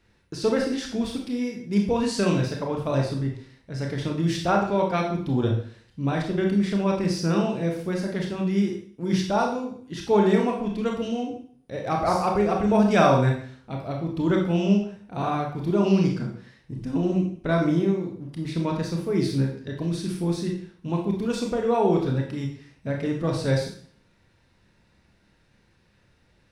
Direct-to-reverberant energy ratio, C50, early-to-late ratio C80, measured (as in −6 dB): 0.5 dB, 5.5 dB, 9.0 dB